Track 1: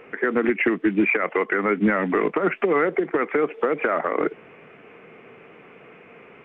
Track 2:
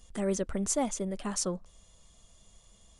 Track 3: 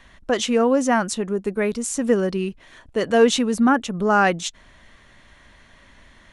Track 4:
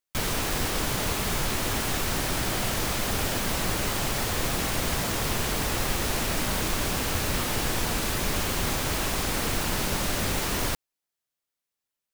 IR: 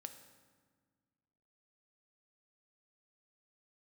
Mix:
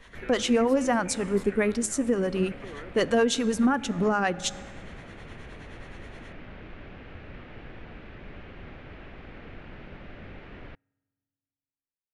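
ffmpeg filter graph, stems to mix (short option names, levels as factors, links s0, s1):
-filter_complex "[0:a]acompressor=threshold=0.0891:ratio=6,volume=0.119[s0];[1:a]aeval=exprs='val(0)*sin(2*PI*2000*n/s)':c=same,volume=0.158[s1];[2:a]acrossover=split=510[s2][s3];[s2]aeval=exprs='val(0)*(1-0.7/2+0.7/2*cos(2*PI*9.5*n/s))':c=same[s4];[s3]aeval=exprs='val(0)*(1-0.7/2-0.7/2*cos(2*PI*9.5*n/s))':c=same[s5];[s4][s5]amix=inputs=2:normalize=0,volume=0.944,asplit=2[s6][s7];[s7]volume=0.668[s8];[3:a]lowpass=f=2500:w=0.5412,lowpass=f=2500:w=1.3066,equalizer=f=1000:t=o:w=0.77:g=-7.5,volume=0.188,asplit=2[s9][s10];[s10]volume=0.1[s11];[4:a]atrim=start_sample=2205[s12];[s8][s11]amix=inputs=2:normalize=0[s13];[s13][s12]afir=irnorm=-1:irlink=0[s14];[s0][s1][s6][s9][s14]amix=inputs=5:normalize=0,alimiter=limit=0.2:level=0:latency=1:release=311"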